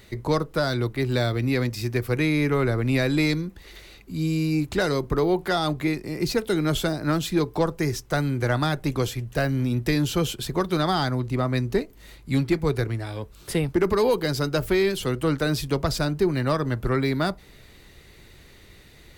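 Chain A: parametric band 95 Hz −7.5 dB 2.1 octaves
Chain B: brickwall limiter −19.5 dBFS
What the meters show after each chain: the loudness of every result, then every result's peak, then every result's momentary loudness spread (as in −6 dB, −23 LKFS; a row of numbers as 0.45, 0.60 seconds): −26.5, −29.0 LKFS; −13.5, −19.5 dBFS; 6, 4 LU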